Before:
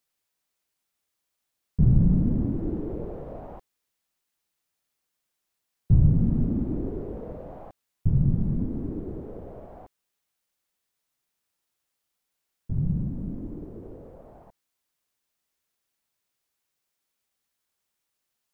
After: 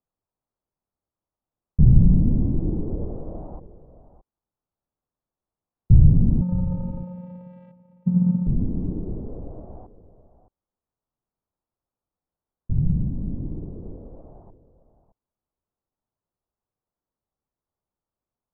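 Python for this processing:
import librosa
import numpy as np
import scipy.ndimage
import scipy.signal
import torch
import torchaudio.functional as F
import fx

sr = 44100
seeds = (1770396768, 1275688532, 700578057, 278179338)

y = scipy.signal.sosfilt(scipy.signal.butter(4, 1100.0, 'lowpass', fs=sr, output='sos'), x)
y = fx.low_shelf(y, sr, hz=150.0, db=9.0)
y = fx.vocoder(y, sr, bands=4, carrier='square', carrier_hz=179.0, at=(6.41, 8.47))
y = y + 10.0 ** (-14.0 / 20.0) * np.pad(y, (int(616 * sr / 1000.0), 0))[:len(y)]
y = F.gain(torch.from_numpy(y), -1.0).numpy()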